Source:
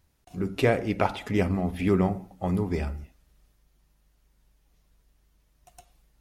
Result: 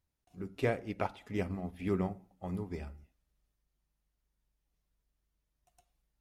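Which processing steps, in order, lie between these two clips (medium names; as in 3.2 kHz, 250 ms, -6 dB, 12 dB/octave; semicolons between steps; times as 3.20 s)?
upward expansion 1.5:1, over -35 dBFS; trim -8 dB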